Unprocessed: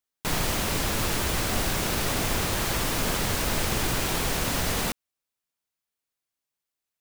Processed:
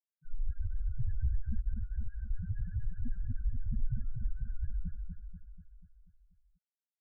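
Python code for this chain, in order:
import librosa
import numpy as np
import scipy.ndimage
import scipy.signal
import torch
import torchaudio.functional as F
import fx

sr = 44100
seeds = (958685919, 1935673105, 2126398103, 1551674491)

p1 = fx.peak_eq(x, sr, hz=1500.0, db=13.0, octaves=0.71)
p2 = np.clip(p1, -10.0 ** (-22.0 / 20.0), 10.0 ** (-22.0 / 20.0))
p3 = fx.spec_topn(p2, sr, count=1)
p4 = scipy.signal.sosfilt(scipy.signal.cheby1(4, 1.0, [290.0, 2500.0], 'bandstop', fs=sr, output='sos'), p3)
p5 = p4 + fx.echo_feedback(p4, sr, ms=243, feedback_pct=55, wet_db=-5.0, dry=0)
y = p5 * 10.0 ** (10.0 / 20.0)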